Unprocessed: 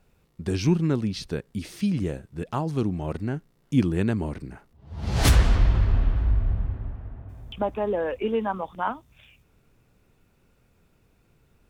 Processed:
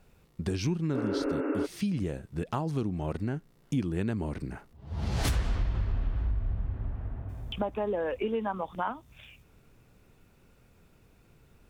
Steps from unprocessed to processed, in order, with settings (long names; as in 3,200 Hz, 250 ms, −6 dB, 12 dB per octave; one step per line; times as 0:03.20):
healed spectral selection 0:00.97–0:01.63, 260–2,900 Hz before
downward compressor 3 to 1, threshold −32 dBFS, peak gain reduction 14.5 dB
level +2.5 dB